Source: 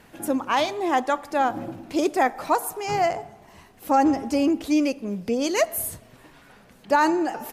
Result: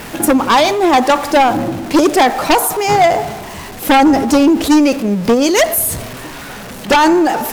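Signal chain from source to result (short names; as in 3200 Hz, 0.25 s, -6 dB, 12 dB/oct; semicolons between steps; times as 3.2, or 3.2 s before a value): zero-crossing step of -38 dBFS; transient shaper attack +8 dB, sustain +4 dB; in parallel at -6.5 dB: sine folder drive 13 dB, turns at -1.5 dBFS; on the sum: de-hum 50.31 Hz, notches 3; gain -1 dB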